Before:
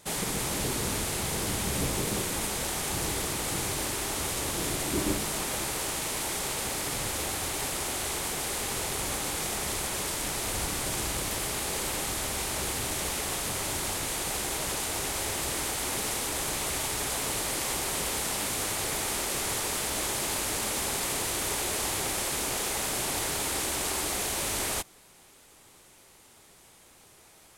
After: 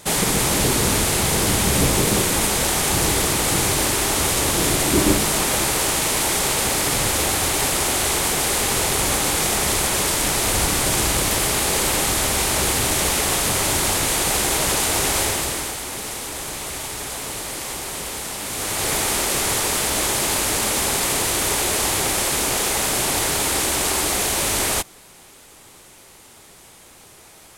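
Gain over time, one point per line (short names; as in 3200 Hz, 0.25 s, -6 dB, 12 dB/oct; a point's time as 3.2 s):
15.2 s +11.5 dB
15.84 s +1.5 dB
18.41 s +1.5 dB
18.9 s +9.5 dB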